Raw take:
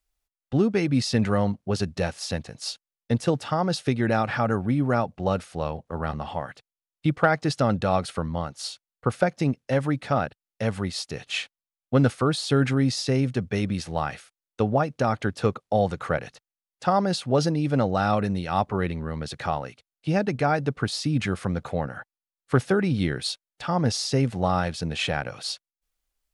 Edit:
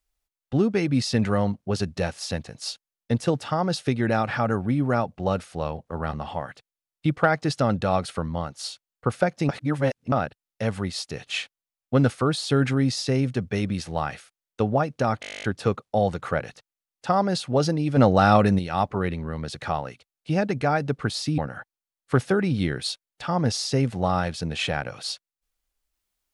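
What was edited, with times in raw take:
9.49–10.12 reverse
15.21 stutter 0.02 s, 12 plays
17.75–18.37 gain +6 dB
21.16–21.78 cut

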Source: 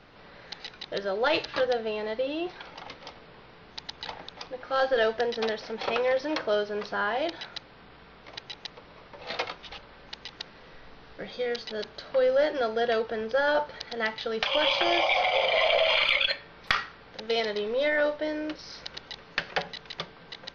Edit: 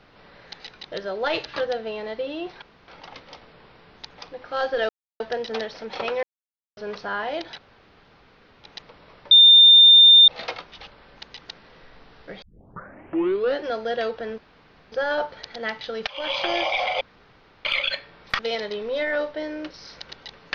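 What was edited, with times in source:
2.62 insert room tone 0.26 s
3.84–4.29 cut
5.08 insert silence 0.31 s
6.11–6.65 mute
7.46–8.52 room tone
9.19 add tone 3610 Hz -7.5 dBFS 0.97 s
11.33 tape start 1.21 s
13.29 insert room tone 0.54 s
14.44–14.77 fade in, from -17.5 dB
15.38–16.02 room tone
16.76–17.24 cut

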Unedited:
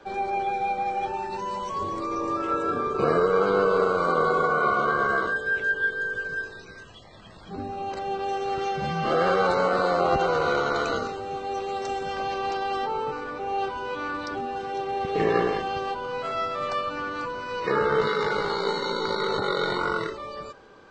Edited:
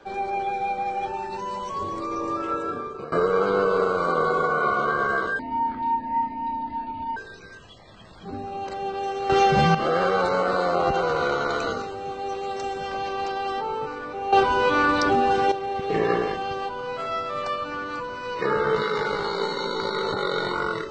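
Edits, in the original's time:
2.24–3.12 fade out equal-power, to -19.5 dB
5.39–6.42 speed 58%
8.55–9 gain +10 dB
13.58–14.77 gain +11 dB

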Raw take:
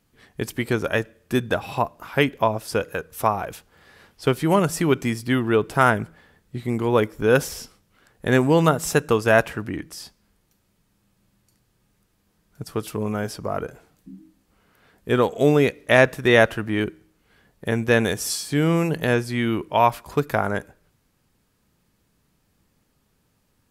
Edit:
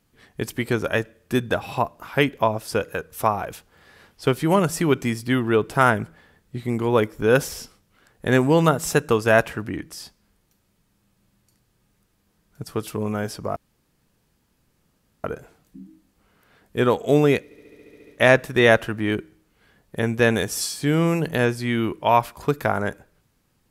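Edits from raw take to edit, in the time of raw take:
13.56 insert room tone 1.68 s
15.76 stutter 0.07 s, 10 plays

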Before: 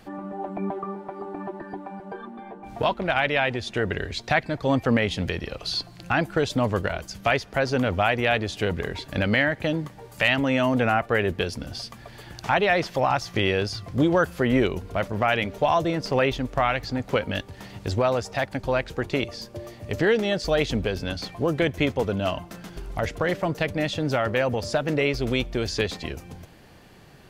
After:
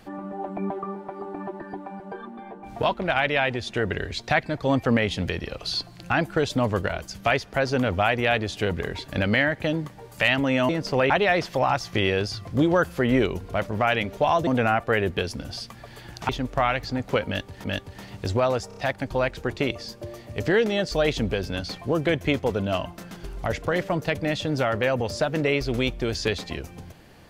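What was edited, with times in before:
10.69–12.51 swap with 15.88–16.29
17.26–17.64 loop, 2 plays
18.3 stutter 0.03 s, 4 plays

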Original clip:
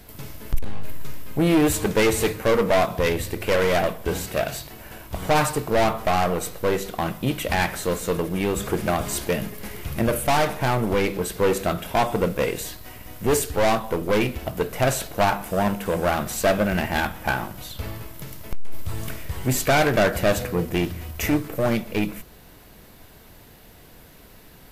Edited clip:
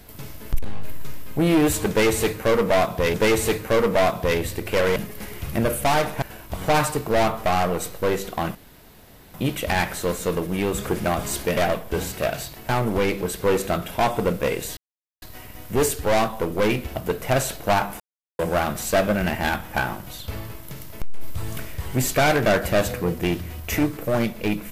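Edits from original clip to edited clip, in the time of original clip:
1.89–3.14 loop, 2 plays
3.71–4.83 swap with 9.39–10.65
7.16 insert room tone 0.79 s
12.73 insert silence 0.45 s
15.51–15.9 mute

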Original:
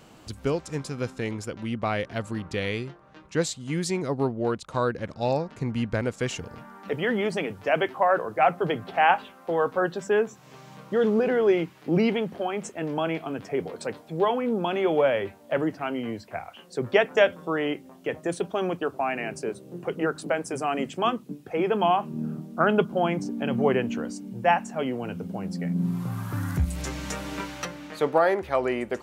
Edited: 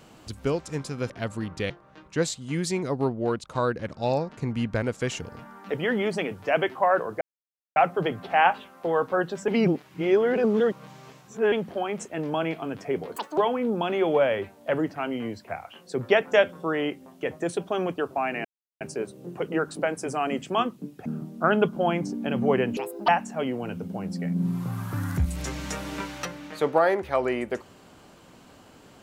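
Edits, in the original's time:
1.1–2.04 cut
2.64–2.89 cut
8.4 insert silence 0.55 s
10.12–12.16 reverse
13.8–14.21 speed 189%
19.28 insert silence 0.36 s
21.53–22.22 cut
23.93–24.48 speed 174%

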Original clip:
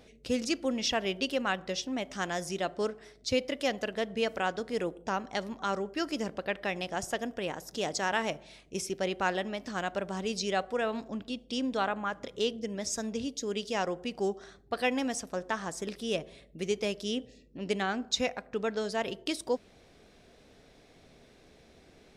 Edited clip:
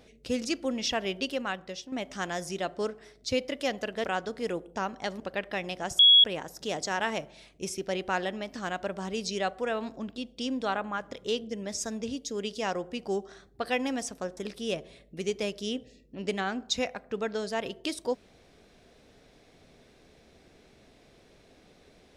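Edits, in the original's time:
1.2–1.92 fade out, to -8.5 dB
4.04–4.35 cut
5.51–6.32 cut
7.11–7.36 bleep 3340 Hz -13.5 dBFS
15.49–15.79 cut

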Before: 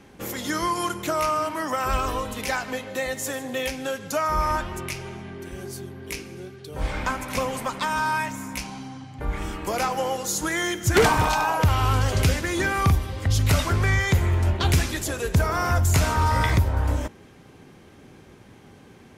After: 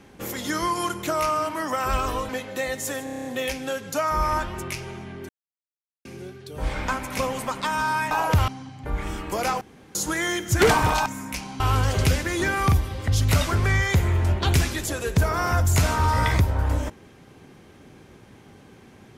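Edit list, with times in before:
2.29–2.68 cut
3.43 stutter 0.03 s, 8 plays
5.47–6.23 mute
8.29–8.83 swap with 11.41–11.78
9.96–10.3 room tone

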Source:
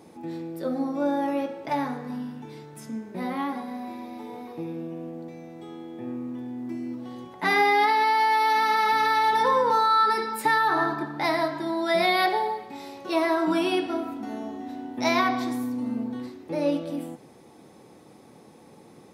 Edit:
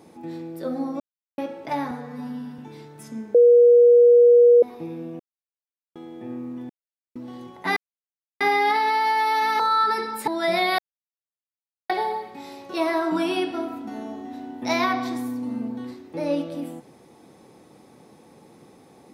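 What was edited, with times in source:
1–1.38 mute
1.91–2.36 stretch 1.5×
3.12–4.4 bleep 480 Hz -9.5 dBFS
4.97–5.73 mute
6.47–6.93 mute
7.54 insert silence 0.64 s
8.73–9.79 cut
10.47–11.74 cut
12.25 insert silence 1.11 s

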